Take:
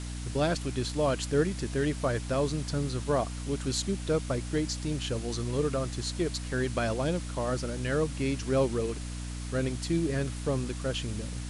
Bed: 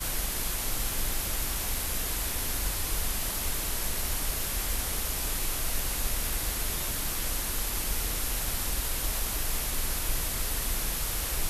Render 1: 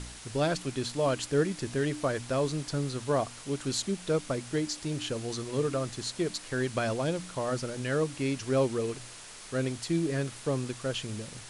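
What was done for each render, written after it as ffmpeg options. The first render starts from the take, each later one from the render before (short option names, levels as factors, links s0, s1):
-af "bandreject=f=60:t=h:w=4,bandreject=f=120:t=h:w=4,bandreject=f=180:t=h:w=4,bandreject=f=240:t=h:w=4,bandreject=f=300:t=h:w=4"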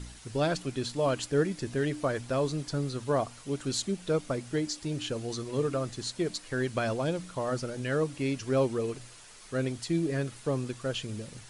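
-af "afftdn=nr=7:nf=-47"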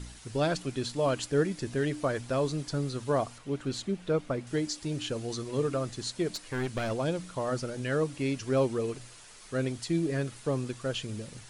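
-filter_complex "[0:a]asettb=1/sr,asplit=3[s0][s1][s2];[s0]atrim=end=3.384[s3];[s1]atrim=start=3.38:end=4.47,asetpts=PTS-STARTPTS,afade=t=in:d=0.004:c=qsin,afade=t=out:st=1.086:d=0.004:c=qsin,bass=f=250:g=0,treble=f=4000:g=-10[s4];[s2]atrim=start=4.466[s5];[s3][s4]acrossfade=d=0.004:c1=hsin:c2=qsin[s6];[s6][s5]acrossfade=d=0.004:c1=qsin:c2=hsin,asettb=1/sr,asplit=3[s7][s8][s9];[s7]atrim=end=6.344[s10];[s8]atrim=start=6.34:end=6.91,asetpts=PTS-STARTPTS,afade=t=in:d=0.004:c=qsin,afade=t=out:st=0.566:d=0.004:c=qsin,aeval=exprs='clip(val(0),-1,0.0211)':c=same[s11];[s9]atrim=start=6.906[s12];[s10][s11]acrossfade=d=0.004:c1=hsin:c2=qsin[s13];[s13][s12]acrossfade=d=0.004:c1=qsin:c2=hsin"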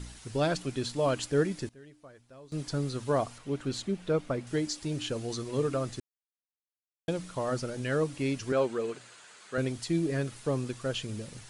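-filter_complex "[0:a]asettb=1/sr,asplit=3[s0][s1][s2];[s0]atrim=end=8.524[s3];[s1]atrim=start=8.52:end=9.58,asetpts=PTS-STARTPTS,afade=t=in:d=0.004:c=qsin,afade=t=out:st=1.056:d=0.004:c=qsin,highpass=220,equalizer=f=290:t=q:w=4:g=-5,equalizer=f=1500:t=q:w=4:g=6,equalizer=f=5500:t=q:w=4:g=-7,lowpass=f=8400:w=0.5412,lowpass=f=8400:w=1.3066[s4];[s2]atrim=start=9.576[s5];[s3][s4]acrossfade=d=0.004:c1=hsin:c2=qsin[s6];[s6][s5]acrossfade=d=0.004:c1=qsin:c2=hsin,asplit=5[s7][s8][s9][s10][s11];[s7]atrim=end=1.69,asetpts=PTS-STARTPTS,afade=t=out:st=1.39:d=0.3:c=log:silence=0.0749894[s12];[s8]atrim=start=1.69:end=2.52,asetpts=PTS-STARTPTS,volume=0.075[s13];[s9]atrim=start=2.52:end=6,asetpts=PTS-STARTPTS,afade=t=in:d=0.3:c=log:silence=0.0749894,afade=t=out:st=3.476:d=0.004:c=hsin[s14];[s10]atrim=start=6:end=7.08,asetpts=PTS-STARTPTS,volume=0[s15];[s11]atrim=start=7.08,asetpts=PTS-STARTPTS,afade=t=in:d=0.004:c=hsin[s16];[s12][s13][s14][s15][s16]concat=n=5:v=0:a=1"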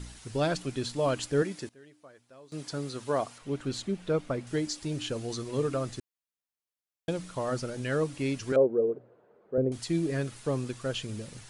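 -filter_complex "[0:a]asettb=1/sr,asplit=3[s0][s1][s2];[s0]atrim=end=1.424[s3];[s1]atrim=start=1.42:end=3.42,asetpts=PTS-STARTPTS,afade=t=in:d=0.004:c=qsin,afade=t=out:st=1.996:d=0.004:c=qsin,highpass=f=250:p=1[s4];[s2]atrim=start=3.416[s5];[s3][s4]acrossfade=d=0.004:c1=hsin:c2=qsin[s6];[s6][s5]acrossfade=d=0.004:c1=qsin:c2=hsin,asettb=1/sr,asplit=3[s7][s8][s9];[s7]atrim=end=8.564[s10];[s8]atrim=start=8.56:end=9.72,asetpts=PTS-STARTPTS,afade=t=in:d=0.004:c=qsin,afade=t=out:st=1.156:d=0.004:c=qsin,lowpass=f=490:t=q:w=2.2[s11];[s9]atrim=start=9.716[s12];[s10][s11]acrossfade=d=0.004:c1=hsin:c2=qsin[s13];[s13][s12]acrossfade=d=0.004:c1=qsin:c2=hsin"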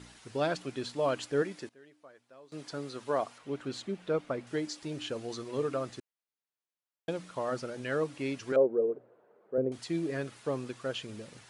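-af "highpass=f=340:p=1,highshelf=f=5000:g=-10.5"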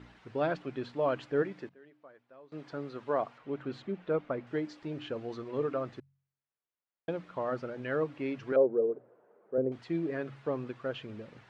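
-af "lowpass=2300,bandreject=f=45.69:t=h:w=4,bandreject=f=91.38:t=h:w=4,bandreject=f=137.07:t=h:w=4,bandreject=f=182.76:t=h:w=4"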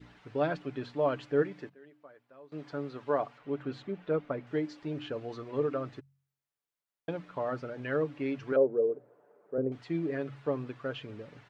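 -af "aecho=1:1:6.9:0.36,adynamicequalizer=threshold=0.00891:dfrequency=1000:dqfactor=1:tfrequency=1000:tqfactor=1:attack=5:release=100:ratio=0.375:range=2.5:mode=cutabove:tftype=bell"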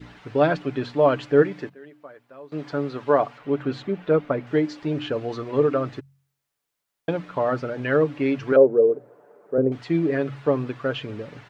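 -af "volume=3.35"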